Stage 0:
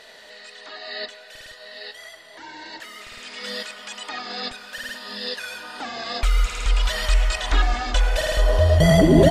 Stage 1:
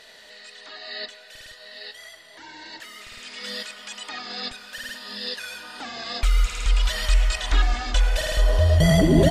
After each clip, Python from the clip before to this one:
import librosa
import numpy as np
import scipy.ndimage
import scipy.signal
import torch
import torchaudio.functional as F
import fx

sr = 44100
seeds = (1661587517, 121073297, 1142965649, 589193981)

y = fx.peak_eq(x, sr, hz=660.0, db=-5.0, octaves=2.9)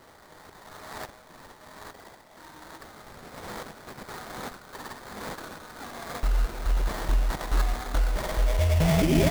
y = fx.sample_hold(x, sr, seeds[0], rate_hz=2800.0, jitter_pct=20)
y = y * librosa.db_to_amplitude(-5.0)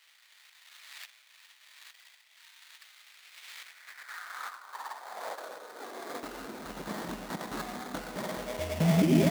y = fx.filter_sweep_highpass(x, sr, from_hz=2600.0, to_hz=200.0, start_s=3.53, end_s=6.74, q=2.7)
y = y * librosa.db_to_amplitude(-5.0)